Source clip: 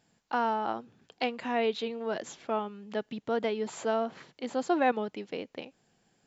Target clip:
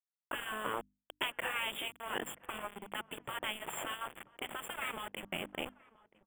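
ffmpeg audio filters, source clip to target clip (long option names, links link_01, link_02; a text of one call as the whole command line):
ffmpeg -i in.wav -filter_complex "[0:a]afftfilt=real='re*lt(hypot(re,im),0.0631)':imag='im*lt(hypot(re,im),0.0631)':win_size=1024:overlap=0.75,highpass=frequency=42:poles=1,afwtdn=0.00178,lowshelf=frequency=98:gain=-4,aeval=exprs='val(0)*gte(abs(val(0)),0.00596)':channel_layout=same,asuperstop=centerf=5100:order=20:qfactor=1.3,bandreject=frequency=50:width_type=h:width=6,bandreject=frequency=100:width_type=h:width=6,bandreject=frequency=150:width_type=h:width=6,bandreject=frequency=200:width_type=h:width=6,bandreject=frequency=250:width_type=h:width=6,bandreject=frequency=300:width_type=h:width=6,asplit=2[link_01][link_02];[link_02]adelay=980,lowpass=frequency=1200:poles=1,volume=-20.5dB,asplit=2[link_03][link_04];[link_04]adelay=980,lowpass=frequency=1200:poles=1,volume=0.44,asplit=2[link_05][link_06];[link_06]adelay=980,lowpass=frequency=1200:poles=1,volume=0.44[link_07];[link_01][link_03][link_05][link_07]amix=inputs=4:normalize=0,volume=6dB" out.wav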